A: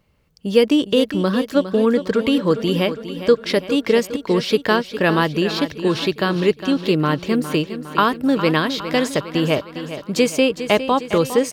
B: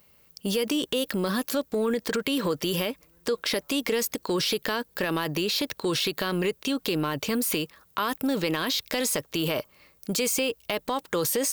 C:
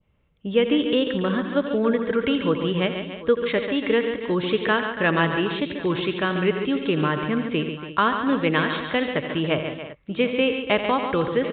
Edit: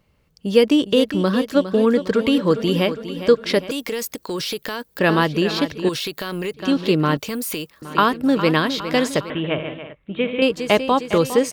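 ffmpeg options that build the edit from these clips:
-filter_complex "[1:a]asplit=3[a][b][c];[0:a]asplit=5[d][e][f][g][h];[d]atrim=end=3.712[i];[a]atrim=start=3.708:end=4.992[j];[e]atrim=start=4.988:end=5.892[k];[b]atrim=start=5.888:end=6.542[l];[f]atrim=start=6.538:end=7.172[m];[c]atrim=start=7.168:end=7.822[n];[g]atrim=start=7.818:end=9.302[o];[2:a]atrim=start=9.298:end=10.422[p];[h]atrim=start=10.418[q];[i][j]acrossfade=d=0.004:c1=hsin:c2=hsin[r];[r][k]acrossfade=d=0.004:c1=hsin:c2=hsin[s];[s][l]acrossfade=d=0.004:c1=hsin:c2=hsin[t];[t][m]acrossfade=d=0.004:c1=hsin:c2=hsin[u];[u][n]acrossfade=d=0.004:c1=hsin:c2=hsin[v];[v][o]acrossfade=d=0.004:c1=hsin:c2=hsin[w];[w][p]acrossfade=d=0.004:c1=hsin:c2=hsin[x];[x][q]acrossfade=d=0.004:c1=hsin:c2=hsin"

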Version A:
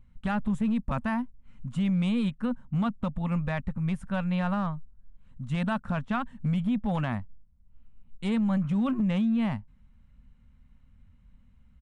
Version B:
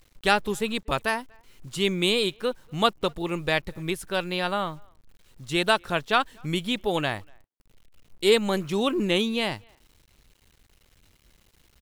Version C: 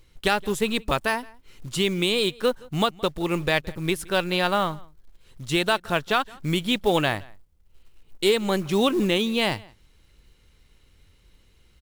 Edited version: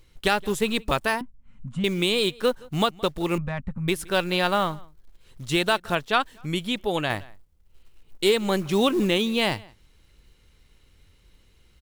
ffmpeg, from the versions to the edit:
-filter_complex "[0:a]asplit=2[a][b];[2:a]asplit=4[c][d][e][f];[c]atrim=end=1.212[g];[a]atrim=start=1.208:end=1.842[h];[d]atrim=start=1.838:end=3.382[i];[b]atrim=start=3.378:end=3.882[j];[e]atrim=start=3.878:end=5.952[k];[1:a]atrim=start=5.948:end=7.102[l];[f]atrim=start=7.098[m];[g][h]acrossfade=d=0.004:c1=hsin:c2=hsin[n];[n][i]acrossfade=d=0.004:c1=hsin:c2=hsin[o];[o][j]acrossfade=d=0.004:c1=hsin:c2=hsin[p];[p][k]acrossfade=d=0.004:c1=hsin:c2=hsin[q];[q][l]acrossfade=d=0.004:c1=hsin:c2=hsin[r];[r][m]acrossfade=d=0.004:c1=hsin:c2=hsin"

